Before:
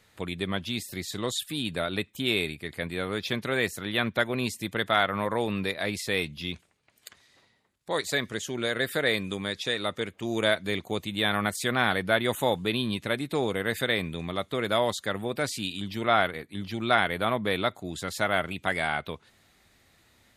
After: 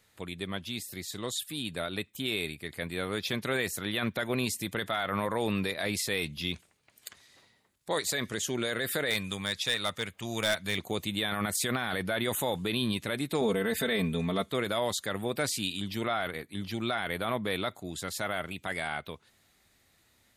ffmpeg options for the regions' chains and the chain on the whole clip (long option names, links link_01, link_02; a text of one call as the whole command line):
ffmpeg -i in.wav -filter_complex "[0:a]asettb=1/sr,asplit=3[link_01][link_02][link_03];[link_01]atrim=end=9.104[link_04];[link_02]atrim=start=9.1:end=10.78,asetpts=PTS-STARTPTS,afade=type=in:duration=0.004:curve=qsin,afade=type=out:start_time=1.676:duration=0.004:curve=qsin,equalizer=frequency=350:width=1:gain=-9,volume=22dB,asoftclip=hard,volume=-22dB[link_05];[link_03]atrim=start=10.776[link_06];[link_04][link_05]acrossfade=duration=0.004:curve1=hsin:curve2=qsin[link_07];[link_07][link_06]acrossfade=duration=0.004:curve1=qsin:curve2=hsin,asettb=1/sr,asplit=3[link_08][link_09][link_10];[link_08]atrim=end=13.414[link_11];[link_09]atrim=start=13.41:end=14.5,asetpts=PTS-STARTPTS,afade=type=in:duration=0.004:curve=qsin,afade=type=out:start_time=1.086:duration=0.004:curve=qsin,tiltshelf=frequency=970:gain=3,aecho=1:1:4.5:0.82,atrim=end_sample=48069[link_12];[link_10]atrim=start=14.496[link_13];[link_11][link_12]acrossfade=duration=0.004:curve1=hsin:curve2=qsin[link_14];[link_14][link_13]acrossfade=duration=0.004:curve1=qsin:curve2=hsin,highshelf=frequency=6200:gain=7,dynaudnorm=framelen=290:gausssize=21:maxgain=11.5dB,alimiter=limit=-13dB:level=0:latency=1:release=15,volume=-6dB" out.wav